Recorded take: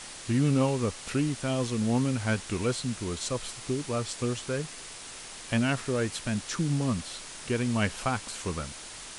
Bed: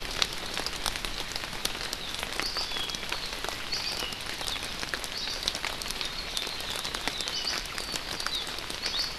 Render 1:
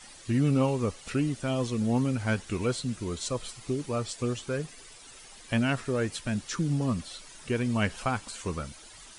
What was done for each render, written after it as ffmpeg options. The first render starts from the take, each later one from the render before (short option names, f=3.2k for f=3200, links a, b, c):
-af "afftdn=nr=11:nf=-43"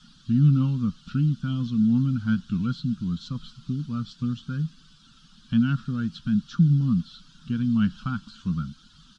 -filter_complex "[0:a]acrossover=split=5400[a][b];[b]acompressor=threshold=-54dB:ratio=4:attack=1:release=60[c];[a][c]amix=inputs=2:normalize=0,firequalizer=gain_entry='entry(110,0);entry(160,13);entry(230,8);entry(370,-19);entry(640,-25);entry(1400,1);entry(2000,-23);entry(3200,0);entry(4900,-4);entry(8900,-21)':delay=0.05:min_phase=1"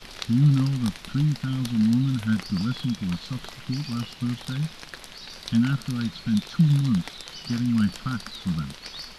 -filter_complex "[1:a]volume=-8dB[a];[0:a][a]amix=inputs=2:normalize=0"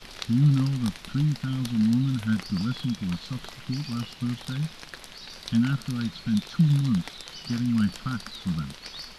-af "volume=-1.5dB"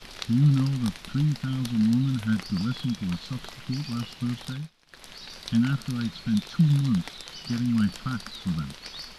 -filter_complex "[0:a]asplit=3[a][b][c];[a]atrim=end=4.71,asetpts=PTS-STARTPTS,afade=t=out:st=4.47:d=0.24:silence=0.0944061[d];[b]atrim=start=4.71:end=4.86,asetpts=PTS-STARTPTS,volume=-20.5dB[e];[c]atrim=start=4.86,asetpts=PTS-STARTPTS,afade=t=in:d=0.24:silence=0.0944061[f];[d][e][f]concat=n=3:v=0:a=1"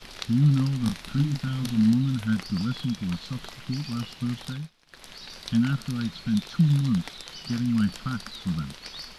-filter_complex "[0:a]asettb=1/sr,asplit=3[a][b][c];[a]atrim=end=0.794[d];[b]atrim=start=0.79:end=1.93,asetpts=PTS-STARTPTS,afade=t=in:d=0.004:c=qsin,afade=t=out:st=1.136:d=0.004:c=qsin,asplit=2[e][f];[f]adelay=36,volume=-5dB[g];[e][g]amix=inputs=2:normalize=0,atrim=end_sample=50274[h];[c]atrim=start=1.926[i];[d][h]acrossfade=d=0.004:c1=hsin:c2=qsin[j];[j][i]acrossfade=d=0.004:c1=qsin:c2=hsin"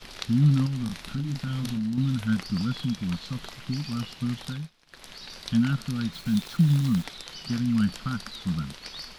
-filter_complex "[0:a]asettb=1/sr,asplit=3[a][b][c];[a]atrim=end=0.664[d];[b]atrim=start=0.66:end=1.98,asetpts=PTS-STARTPTS,afade=t=in:d=0.004:c=qsin,afade=t=out:st=1.316:d=0.004:c=qsin,acompressor=threshold=-25dB:ratio=10:attack=3.2:release=140:knee=1:detection=peak[e];[c]atrim=start=1.976[f];[d][e]acrossfade=d=0.004:c1=hsin:c2=qsin[g];[g][f]acrossfade=d=0.004:c1=qsin:c2=hsin,asettb=1/sr,asplit=3[h][i][j];[h]atrim=end=6.134[k];[i]atrim=start=6.13:end=7.05,asetpts=PTS-STARTPTS,afade=t=in:d=0.004:c=qsin,afade=t=out:st=0.916:d=0.004:c=qsin,acrusher=bits=8:dc=4:mix=0:aa=0.000001[l];[j]atrim=start=7.046[m];[k][l]acrossfade=d=0.004:c1=hsin:c2=qsin[n];[n][m]acrossfade=d=0.004:c1=qsin:c2=hsin"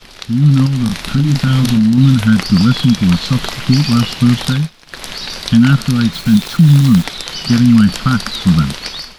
-af "dynaudnorm=f=210:g=5:m=15dB,alimiter=level_in=5dB:limit=-1dB:release=50:level=0:latency=1"